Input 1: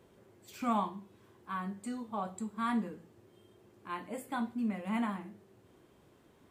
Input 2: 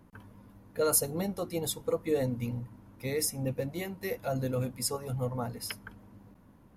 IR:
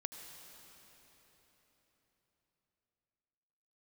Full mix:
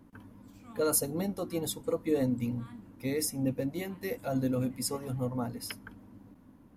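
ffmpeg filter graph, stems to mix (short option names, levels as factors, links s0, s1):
-filter_complex "[0:a]equalizer=f=670:w=0.43:g=-11,volume=0.211[s0];[1:a]equalizer=f=270:t=o:w=0.5:g=9,volume=0.794[s1];[s0][s1]amix=inputs=2:normalize=0"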